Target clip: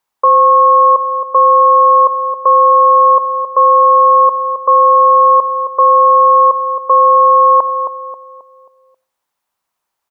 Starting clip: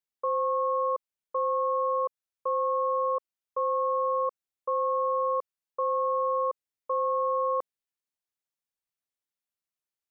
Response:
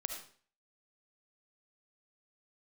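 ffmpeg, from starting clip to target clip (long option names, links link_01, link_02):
-filter_complex "[0:a]equalizer=frequency=950:width_type=o:width=1.1:gain=14.5,asplit=2[link_01][link_02];[link_02]adelay=268,lowpass=frequency=1000:poles=1,volume=-10.5dB,asplit=2[link_03][link_04];[link_04]adelay=268,lowpass=frequency=1000:poles=1,volume=0.48,asplit=2[link_05][link_06];[link_06]adelay=268,lowpass=frequency=1000:poles=1,volume=0.48,asplit=2[link_07][link_08];[link_08]adelay=268,lowpass=frequency=1000:poles=1,volume=0.48,asplit=2[link_09][link_10];[link_10]adelay=268,lowpass=frequency=1000:poles=1,volume=0.48[link_11];[link_01][link_03][link_05][link_07][link_09][link_11]amix=inputs=6:normalize=0,asplit=2[link_12][link_13];[1:a]atrim=start_sample=2205[link_14];[link_13][link_14]afir=irnorm=-1:irlink=0,volume=-14dB[link_15];[link_12][link_15]amix=inputs=2:normalize=0,alimiter=level_in=13.5dB:limit=-1dB:release=50:level=0:latency=1,volume=-1dB"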